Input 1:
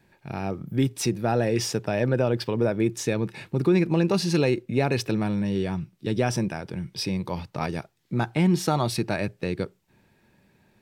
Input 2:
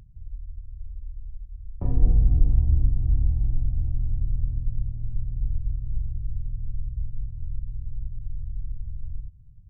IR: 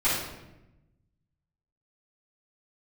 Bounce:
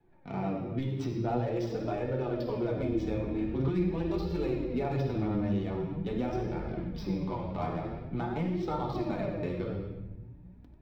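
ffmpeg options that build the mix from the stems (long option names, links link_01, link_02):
-filter_complex "[0:a]bandreject=frequency=1600:width=12,adynamicsmooth=sensitivity=5.5:basefreq=1100,volume=-3dB,asplit=2[link_01][link_02];[link_02]volume=-8.5dB[link_03];[1:a]highpass=72,equalizer=frequency=330:width_type=o:width=0.52:gain=14.5,aeval=exprs='val(0)+0.00224*(sin(2*PI*60*n/s)+sin(2*PI*2*60*n/s)/2+sin(2*PI*3*60*n/s)/3+sin(2*PI*4*60*n/s)/4+sin(2*PI*5*60*n/s)/5)':channel_layout=same,adelay=950,volume=2.5dB,asplit=2[link_04][link_05];[link_05]volume=-21dB[link_06];[2:a]atrim=start_sample=2205[link_07];[link_03][link_06]amix=inputs=2:normalize=0[link_08];[link_08][link_07]afir=irnorm=-1:irlink=0[link_09];[link_01][link_04][link_09]amix=inputs=3:normalize=0,superequalizer=13b=1.58:15b=0.501:16b=0.282,acrossover=split=170|1400[link_10][link_11][link_12];[link_10]acompressor=threshold=-34dB:ratio=4[link_13];[link_11]acompressor=threshold=-27dB:ratio=4[link_14];[link_12]acompressor=threshold=-50dB:ratio=4[link_15];[link_13][link_14][link_15]amix=inputs=3:normalize=0,flanger=delay=2.2:depth=7.6:regen=29:speed=0.45:shape=sinusoidal"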